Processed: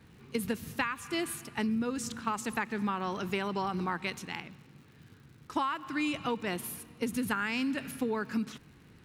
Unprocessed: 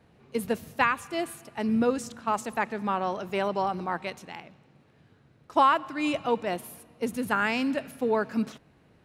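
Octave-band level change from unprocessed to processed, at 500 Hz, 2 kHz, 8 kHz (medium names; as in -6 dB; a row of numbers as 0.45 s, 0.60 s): -8.0 dB, -4.0 dB, +2.0 dB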